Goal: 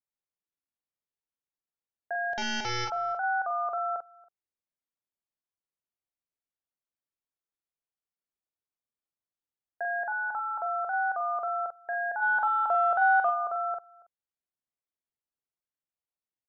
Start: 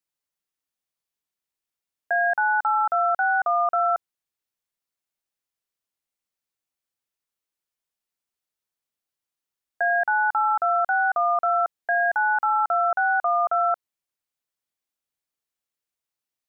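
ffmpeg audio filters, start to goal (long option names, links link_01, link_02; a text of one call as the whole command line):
ffmpeg -i in.wav -filter_complex "[0:a]lowpass=frequency=1000:poles=1,asplit=3[link_01][link_02][link_03];[link_01]afade=type=out:start_time=2.33:duration=0.02[link_04];[link_02]aeval=exprs='0.126*(cos(1*acos(clip(val(0)/0.126,-1,1)))-cos(1*PI/2))+0.0398*(cos(2*acos(clip(val(0)/0.126,-1,1)))-cos(2*PI/2))+0.0316*(cos(3*acos(clip(val(0)/0.126,-1,1)))-cos(3*PI/2))+0.0631*(cos(5*acos(clip(val(0)/0.126,-1,1)))-cos(5*PI/2))':channel_layout=same,afade=type=in:start_time=2.33:duration=0.02,afade=type=out:start_time=2.84:duration=0.02[link_05];[link_03]afade=type=in:start_time=2.84:duration=0.02[link_06];[link_04][link_05][link_06]amix=inputs=3:normalize=0,asplit=3[link_07][link_08][link_09];[link_07]afade=type=out:start_time=12.21:duration=0.02[link_10];[link_08]acontrast=69,afade=type=in:start_time=12.21:duration=0.02,afade=type=out:start_time=13.29:duration=0.02[link_11];[link_09]afade=type=in:start_time=13.29:duration=0.02[link_12];[link_10][link_11][link_12]amix=inputs=3:normalize=0,asplit=2[link_13][link_14];[link_14]adelay=44,volume=-5dB[link_15];[link_13][link_15]amix=inputs=2:normalize=0,asplit=2[link_16][link_17];[link_17]adelay=279.9,volume=-24dB,highshelf=frequency=4000:gain=-6.3[link_18];[link_16][link_18]amix=inputs=2:normalize=0,volume=-6.5dB" out.wav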